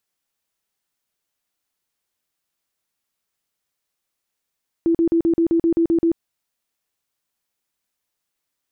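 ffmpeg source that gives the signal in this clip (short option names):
-f lavfi -i "aevalsrc='0.211*sin(2*PI*333*mod(t,0.13))*lt(mod(t,0.13),29/333)':d=1.3:s=44100"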